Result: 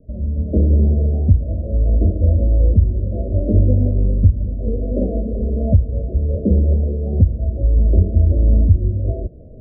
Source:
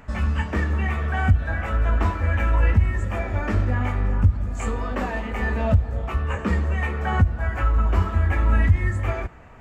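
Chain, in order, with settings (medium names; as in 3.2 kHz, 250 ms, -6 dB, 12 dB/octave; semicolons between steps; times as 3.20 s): steep low-pass 630 Hz 96 dB/octave; level rider gain up to 13.5 dB; trim -1 dB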